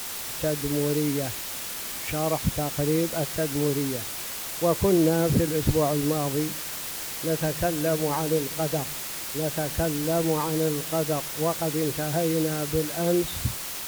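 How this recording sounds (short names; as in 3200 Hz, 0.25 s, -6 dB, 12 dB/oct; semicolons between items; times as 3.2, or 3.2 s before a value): a quantiser's noise floor 6-bit, dither triangular; AAC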